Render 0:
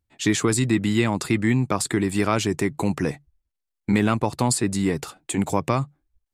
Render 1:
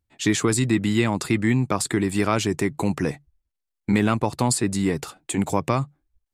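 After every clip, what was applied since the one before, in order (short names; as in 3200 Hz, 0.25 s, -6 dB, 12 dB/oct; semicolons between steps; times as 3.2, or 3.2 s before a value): nothing audible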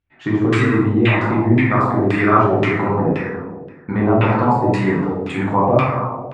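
plate-style reverb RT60 1.7 s, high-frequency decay 0.75×, DRR -8 dB; LFO low-pass saw down 1.9 Hz 590–2900 Hz; gain -2.5 dB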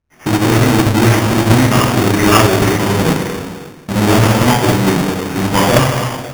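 half-waves squared off; sample-rate reducer 4000 Hz, jitter 0%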